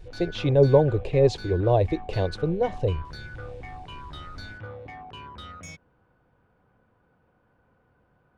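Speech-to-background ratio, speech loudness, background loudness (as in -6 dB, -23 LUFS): 18.0 dB, -23.5 LUFS, -41.5 LUFS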